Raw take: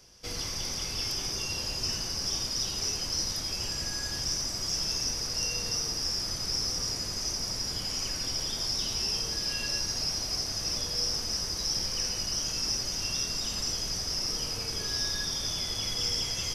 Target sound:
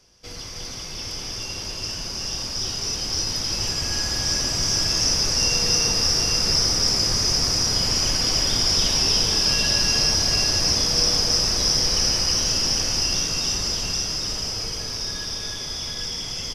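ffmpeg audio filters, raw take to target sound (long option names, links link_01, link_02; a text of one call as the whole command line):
ffmpeg -i in.wav -af "highshelf=frequency=10000:gain=-9,bandreject=frequency=66.54:width_type=h:width=4,bandreject=frequency=133.08:width_type=h:width=4,bandreject=frequency=199.62:width_type=h:width=4,bandreject=frequency=266.16:width_type=h:width=4,bandreject=frequency=332.7:width_type=h:width=4,bandreject=frequency=399.24:width_type=h:width=4,bandreject=frequency=465.78:width_type=h:width=4,bandreject=frequency=532.32:width_type=h:width=4,bandreject=frequency=598.86:width_type=h:width=4,bandreject=frequency=665.4:width_type=h:width=4,bandreject=frequency=731.94:width_type=h:width=4,bandreject=frequency=798.48:width_type=h:width=4,bandreject=frequency=865.02:width_type=h:width=4,bandreject=frequency=931.56:width_type=h:width=4,bandreject=frequency=998.1:width_type=h:width=4,bandreject=frequency=1064.64:width_type=h:width=4,bandreject=frequency=1131.18:width_type=h:width=4,bandreject=frequency=1197.72:width_type=h:width=4,bandreject=frequency=1264.26:width_type=h:width=4,bandreject=frequency=1330.8:width_type=h:width=4,bandreject=frequency=1397.34:width_type=h:width=4,bandreject=frequency=1463.88:width_type=h:width=4,bandreject=frequency=1530.42:width_type=h:width=4,bandreject=frequency=1596.96:width_type=h:width=4,bandreject=frequency=1663.5:width_type=h:width=4,bandreject=frequency=1730.04:width_type=h:width=4,bandreject=frequency=1796.58:width_type=h:width=4,bandreject=frequency=1863.12:width_type=h:width=4,bandreject=frequency=1929.66:width_type=h:width=4,bandreject=frequency=1996.2:width_type=h:width=4,bandreject=frequency=2062.74:width_type=h:width=4,bandreject=frequency=2129.28:width_type=h:width=4,bandreject=frequency=2195.82:width_type=h:width=4,bandreject=frequency=2262.36:width_type=h:width=4,bandreject=frequency=2328.9:width_type=h:width=4,dynaudnorm=framelen=230:gausssize=31:maxgain=10dB,aecho=1:1:315|799:0.708|0.631" out.wav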